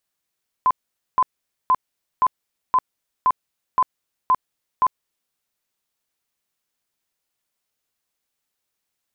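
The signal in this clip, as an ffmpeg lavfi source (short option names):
-f lavfi -i "aevalsrc='0.237*sin(2*PI*1020*mod(t,0.52))*lt(mod(t,0.52),48/1020)':d=4.68:s=44100"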